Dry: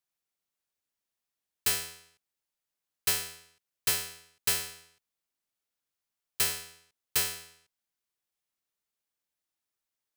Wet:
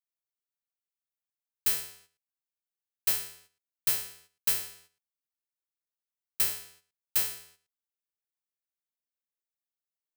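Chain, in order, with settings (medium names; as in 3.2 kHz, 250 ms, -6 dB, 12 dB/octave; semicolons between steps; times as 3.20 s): gate -56 dBFS, range -9 dB; treble shelf 12 kHz +10.5 dB; trim -5.5 dB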